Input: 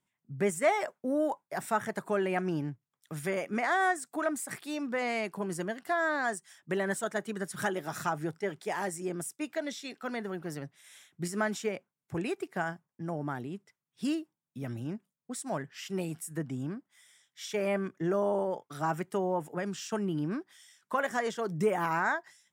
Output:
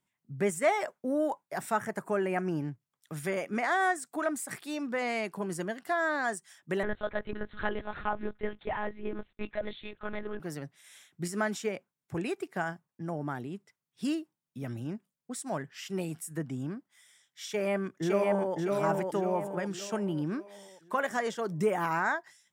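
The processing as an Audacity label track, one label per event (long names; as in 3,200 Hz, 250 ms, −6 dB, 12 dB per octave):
1.790000	2.610000	parametric band 3,700 Hz −12 dB 0.48 octaves
6.830000	10.400000	one-pitch LPC vocoder at 8 kHz 210 Hz
17.460000	18.550000	delay throw 560 ms, feedback 45%, level −2 dB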